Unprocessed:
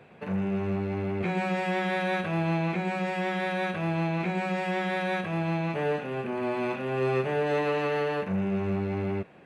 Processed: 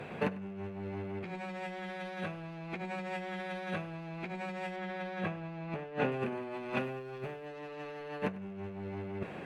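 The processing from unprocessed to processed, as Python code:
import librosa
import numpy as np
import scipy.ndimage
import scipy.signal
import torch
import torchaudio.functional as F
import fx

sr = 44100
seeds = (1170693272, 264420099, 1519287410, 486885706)

y = fx.lowpass(x, sr, hz=3000.0, slope=6, at=(4.76, 6.12))
y = fx.quant_companded(y, sr, bits=8, at=(6.84, 7.47))
y = fx.fold_sine(y, sr, drive_db=5, ceiling_db=-15.5)
y = fx.over_compress(y, sr, threshold_db=-28.0, ratio=-0.5)
y = y + 10.0 ** (-19.0 / 20.0) * np.pad(y, (int(99 * sr / 1000.0), 0))[:len(y)]
y = y * 10.0 ** (-8.5 / 20.0)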